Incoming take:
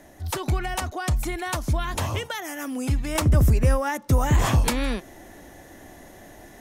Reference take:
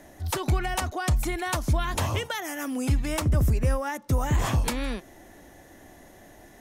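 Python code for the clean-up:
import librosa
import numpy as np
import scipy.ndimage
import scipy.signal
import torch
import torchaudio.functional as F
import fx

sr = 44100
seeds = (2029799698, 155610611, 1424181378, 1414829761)

y = fx.fix_level(x, sr, at_s=3.15, step_db=-4.5)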